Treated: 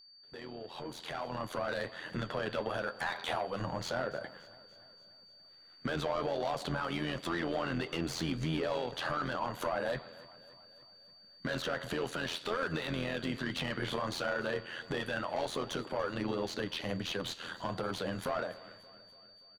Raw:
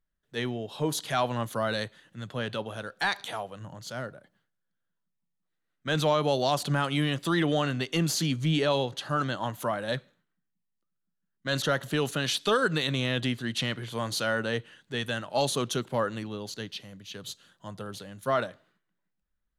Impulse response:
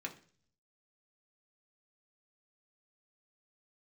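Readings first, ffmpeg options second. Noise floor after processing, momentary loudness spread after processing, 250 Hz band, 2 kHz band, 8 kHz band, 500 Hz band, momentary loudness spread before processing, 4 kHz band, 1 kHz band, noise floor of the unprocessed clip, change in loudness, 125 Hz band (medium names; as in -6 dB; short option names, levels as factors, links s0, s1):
-59 dBFS, 20 LU, -6.5 dB, -5.5 dB, -11.5 dB, -5.5 dB, 14 LU, -8.0 dB, -5.5 dB, -81 dBFS, -7.0 dB, -9.5 dB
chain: -filter_complex "[0:a]acompressor=threshold=0.00631:ratio=4,asplit=2[s0][s1];[s1]highpass=f=720:p=1,volume=14.1,asoftclip=type=tanh:threshold=0.0447[s2];[s0][s2]amix=inputs=2:normalize=0,lowpass=f=1100:p=1,volume=0.501,alimiter=level_in=3.98:limit=0.0631:level=0:latency=1:release=212,volume=0.251,tremolo=f=84:d=0.75,flanger=delay=5.2:depth=7.4:regen=-70:speed=1.4:shape=triangular,dynaudnorm=f=360:g=7:m=3.76,aeval=exprs='val(0)+0.001*sin(2*PI*4600*n/s)':c=same,aecho=1:1:288|576|864|1152|1440:0.0944|0.0548|0.0318|0.0184|0.0107,volume=1.68"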